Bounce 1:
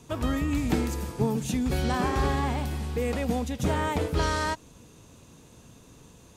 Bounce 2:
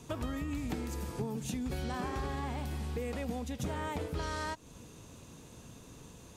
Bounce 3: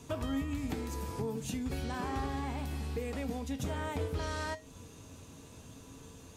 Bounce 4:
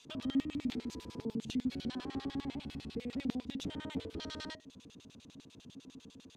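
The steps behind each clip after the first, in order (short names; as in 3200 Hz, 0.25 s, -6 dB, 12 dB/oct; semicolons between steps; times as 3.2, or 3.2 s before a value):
compressor 4:1, threshold -35 dBFS, peak gain reduction 13 dB
resonator 90 Hz, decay 0.25 s, harmonics odd, mix 70%; gain +7.5 dB
LFO band-pass square 10 Hz 240–3600 Hz; gain +5.5 dB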